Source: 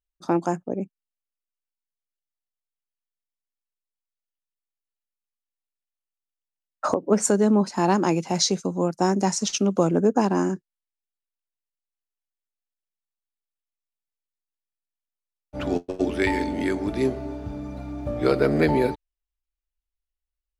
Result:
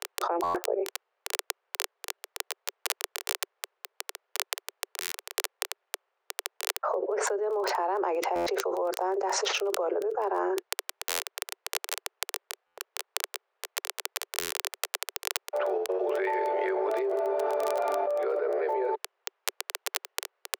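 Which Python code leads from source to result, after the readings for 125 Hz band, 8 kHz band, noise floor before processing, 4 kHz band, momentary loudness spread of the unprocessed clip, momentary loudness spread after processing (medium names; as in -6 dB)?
under -30 dB, -1.5 dB, under -85 dBFS, +1.5 dB, 13 LU, 9 LU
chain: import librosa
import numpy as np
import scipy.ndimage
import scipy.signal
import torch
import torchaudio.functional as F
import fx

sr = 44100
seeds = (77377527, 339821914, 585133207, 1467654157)

y = scipy.signal.sosfilt(scipy.signal.butter(2, 1400.0, 'lowpass', fs=sr, output='sos'), x)
y = fx.dmg_crackle(y, sr, seeds[0], per_s=14.0, level_db=-34.0)
y = scipy.signal.sosfilt(scipy.signal.butter(16, 380.0, 'highpass', fs=sr, output='sos'), y)
y = fx.buffer_glitch(y, sr, at_s=(0.43, 5.0, 8.35, 11.08, 12.66, 14.39), block=512, repeats=9)
y = fx.env_flatten(y, sr, amount_pct=100)
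y = y * 10.0 ** (-11.0 / 20.0)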